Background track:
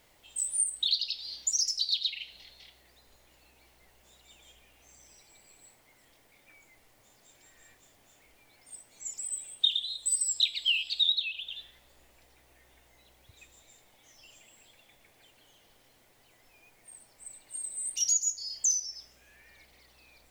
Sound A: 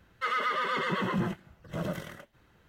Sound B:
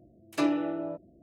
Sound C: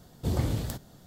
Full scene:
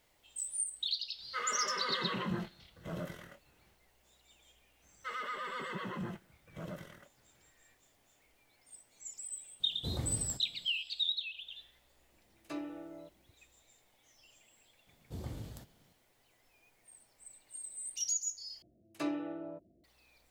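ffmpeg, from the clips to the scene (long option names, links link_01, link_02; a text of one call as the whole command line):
ffmpeg -i bed.wav -i cue0.wav -i cue1.wav -i cue2.wav -filter_complex "[1:a]asplit=2[link_01][link_02];[3:a]asplit=2[link_03][link_04];[2:a]asplit=2[link_05][link_06];[0:a]volume=-7.5dB[link_07];[link_01]asplit=2[link_08][link_09];[link_09]adelay=23,volume=-6.5dB[link_10];[link_08][link_10]amix=inputs=2:normalize=0[link_11];[link_07]asplit=2[link_12][link_13];[link_12]atrim=end=18.624[link_14];[link_06]atrim=end=1.22,asetpts=PTS-STARTPTS,volume=-9.5dB[link_15];[link_13]atrim=start=19.836[link_16];[link_11]atrim=end=2.68,asetpts=PTS-STARTPTS,volume=-8dB,afade=type=in:duration=0.1,afade=type=out:start_time=2.58:duration=0.1,adelay=1120[link_17];[link_02]atrim=end=2.68,asetpts=PTS-STARTPTS,volume=-10.5dB,afade=type=in:duration=0.004:curve=hsin,afade=type=out:start_time=2.676:duration=0.004:curve=hsin,adelay=4830[link_18];[link_03]atrim=end=1.06,asetpts=PTS-STARTPTS,volume=-10dB,afade=type=in:duration=0.004:curve=hsin,afade=type=out:start_time=1.056:duration=0.004:curve=hsin,adelay=9600[link_19];[link_05]atrim=end=1.22,asetpts=PTS-STARTPTS,volume=-15dB,afade=type=in:duration=0.004:curve=hsin,afade=type=out:start_time=1.216:duration=0.004:curve=hsin,adelay=12120[link_20];[link_04]atrim=end=1.06,asetpts=PTS-STARTPTS,volume=-15dB,afade=type=in:duration=0.004:curve=hsin,afade=type=out:start_time=1.056:duration=0.004:curve=hsin,adelay=14870[link_21];[link_14][link_15]acrossfade=duration=0.004:curve1=hsin:curve2=hsin[link_22];[link_22][link_16]acrossfade=duration=0.004:curve1=hsin:curve2=hsin[link_23];[link_23][link_17][link_18][link_19][link_20][link_21]amix=inputs=6:normalize=0" out.wav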